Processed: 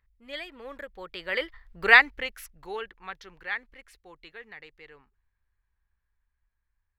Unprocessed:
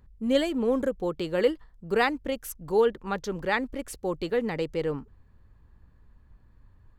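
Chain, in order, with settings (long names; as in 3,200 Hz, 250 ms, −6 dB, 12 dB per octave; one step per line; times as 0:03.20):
source passing by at 0:01.84, 16 m/s, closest 3.9 metres
octave-band graphic EQ 125/250/500/2,000/4,000/8,000 Hz −11/−11/−5/+12/+4/−7 dB
level +4 dB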